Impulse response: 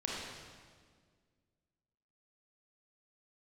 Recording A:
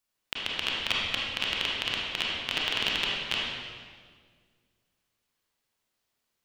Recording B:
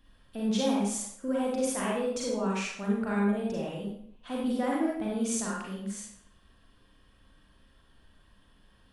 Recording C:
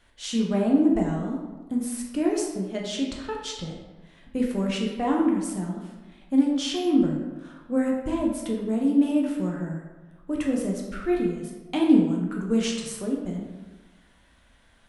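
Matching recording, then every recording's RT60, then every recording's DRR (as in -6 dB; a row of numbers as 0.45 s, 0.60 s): A; 1.8 s, 0.65 s, 1.2 s; -4.5 dB, -4.5 dB, -2.0 dB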